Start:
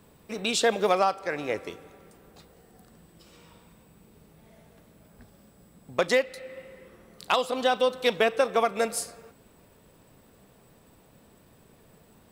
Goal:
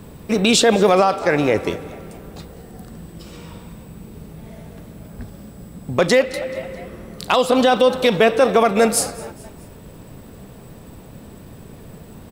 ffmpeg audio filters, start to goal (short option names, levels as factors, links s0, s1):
-filter_complex "[0:a]lowshelf=f=330:g=9,asplit=4[s0][s1][s2][s3];[s1]adelay=214,afreqshift=63,volume=0.0794[s4];[s2]adelay=428,afreqshift=126,volume=0.0398[s5];[s3]adelay=642,afreqshift=189,volume=0.02[s6];[s0][s4][s5][s6]amix=inputs=4:normalize=0,alimiter=level_in=6.31:limit=0.891:release=50:level=0:latency=1,volume=0.631"